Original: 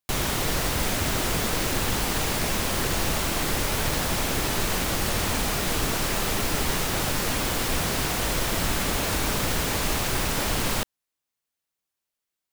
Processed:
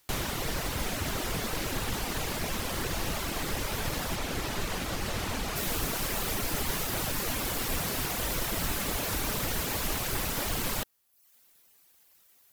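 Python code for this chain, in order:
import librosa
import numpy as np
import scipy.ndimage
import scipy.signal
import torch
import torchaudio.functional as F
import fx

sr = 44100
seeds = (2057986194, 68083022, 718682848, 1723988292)

y = fx.quant_dither(x, sr, seeds[0], bits=10, dither='triangular')
y = fx.high_shelf(y, sr, hz=9800.0, db=fx.steps((0.0, -4.0), (4.14, -9.5), (5.55, 4.5)))
y = fx.dereverb_blind(y, sr, rt60_s=0.67)
y = fx.peak_eq(y, sr, hz=13000.0, db=6.5, octaves=0.34)
y = fx.doppler_dist(y, sr, depth_ms=0.18)
y = y * 10.0 ** (-4.5 / 20.0)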